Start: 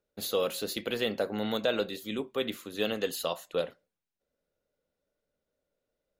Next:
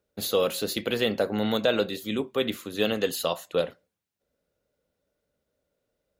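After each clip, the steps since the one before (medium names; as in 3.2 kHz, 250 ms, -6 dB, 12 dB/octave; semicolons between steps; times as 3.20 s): high-pass 52 Hz; bass shelf 120 Hz +7 dB; trim +4.5 dB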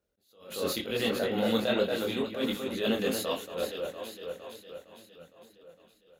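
echo whose repeats swap between lows and highs 230 ms, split 2.5 kHz, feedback 74%, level -5 dB; chorus voices 6, 1.5 Hz, delay 24 ms, depth 3 ms; attacks held to a fixed rise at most 110 dB/s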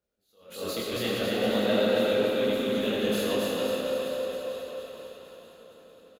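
chorus 1.1 Hz, delay 17 ms, depth 6.5 ms; feedback delay 273 ms, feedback 51%, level -3 dB; algorithmic reverb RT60 1.9 s, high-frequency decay 0.65×, pre-delay 40 ms, DRR -1 dB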